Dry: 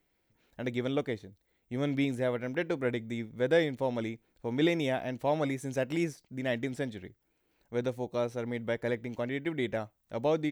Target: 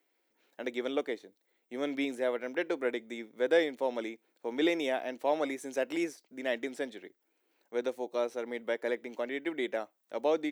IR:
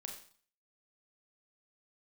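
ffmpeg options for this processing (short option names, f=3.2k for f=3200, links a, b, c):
-af "highpass=f=290:w=0.5412,highpass=f=290:w=1.3066"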